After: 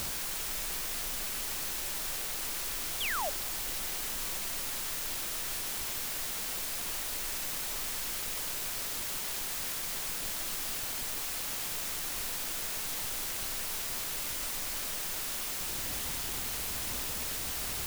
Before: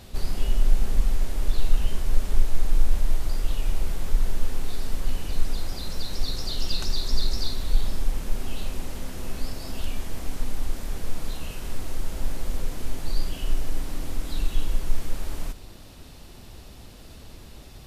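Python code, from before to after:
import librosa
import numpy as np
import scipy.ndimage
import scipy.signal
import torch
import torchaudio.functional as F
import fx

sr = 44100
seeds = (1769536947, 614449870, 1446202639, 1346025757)

y = fx.gate_flip(x, sr, shuts_db=-20.0, range_db=-30)
y = fx.over_compress(y, sr, threshold_db=-46.0, ratio=-1.0)
y = fx.quant_dither(y, sr, seeds[0], bits=6, dither='triangular')
y = fx.spec_paint(y, sr, seeds[1], shape='fall', start_s=3.0, length_s=0.3, low_hz=530.0, high_hz=3700.0, level_db=-34.0)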